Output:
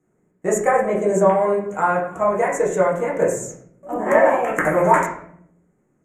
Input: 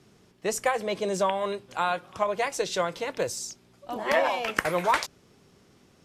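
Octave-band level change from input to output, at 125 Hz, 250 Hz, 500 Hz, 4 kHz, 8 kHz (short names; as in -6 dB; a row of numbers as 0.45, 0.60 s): +12.0 dB, +11.5 dB, +10.5 dB, under -15 dB, +3.5 dB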